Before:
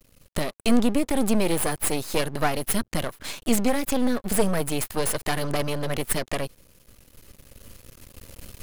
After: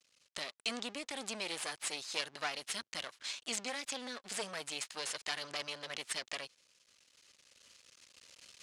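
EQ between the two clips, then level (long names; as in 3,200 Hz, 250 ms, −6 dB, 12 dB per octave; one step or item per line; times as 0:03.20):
resonant band-pass 7,600 Hz, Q 0.96
high-frequency loss of the air 130 metres
+5.0 dB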